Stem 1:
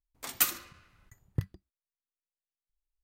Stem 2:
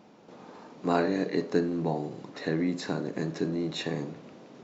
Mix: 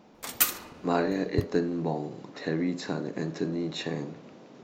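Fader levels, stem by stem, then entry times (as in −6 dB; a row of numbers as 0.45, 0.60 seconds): +2.5, −0.5 decibels; 0.00, 0.00 seconds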